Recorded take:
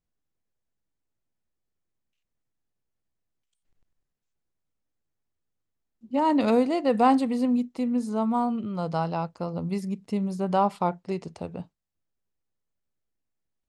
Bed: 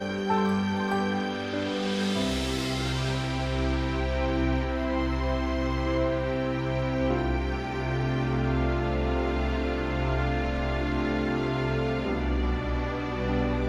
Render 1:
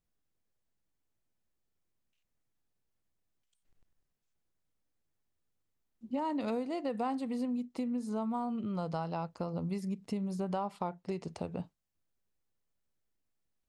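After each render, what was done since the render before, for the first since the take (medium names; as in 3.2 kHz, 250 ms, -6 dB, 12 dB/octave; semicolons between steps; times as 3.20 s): compression 5:1, threshold -33 dBFS, peak gain reduction 15.5 dB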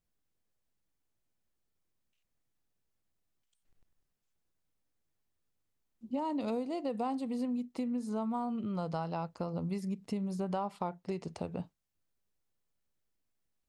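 6.05–7.39 s: peaking EQ 1.7 kHz -7 dB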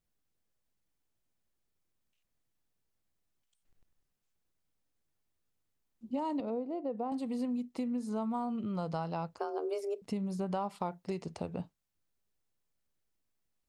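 6.40–7.12 s: band-pass filter 430 Hz, Q 0.74; 9.39–10.02 s: frequency shift +210 Hz; 10.60–11.23 s: treble shelf 4.6 kHz +4.5 dB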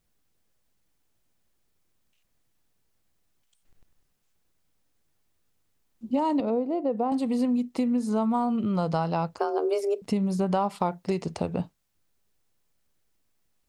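trim +9.5 dB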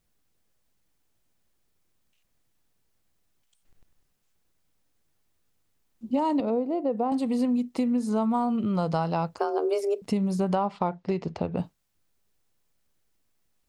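10.55–11.57 s: distance through air 160 m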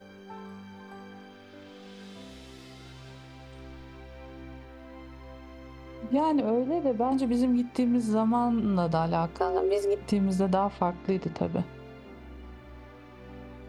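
add bed -18.5 dB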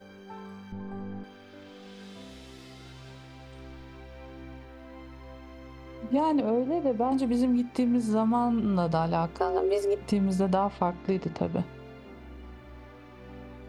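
0.72–1.24 s: tilt EQ -4 dB/octave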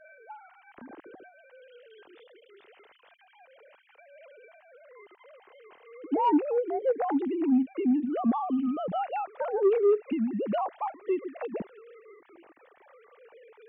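formants replaced by sine waves; saturation -15 dBFS, distortion -19 dB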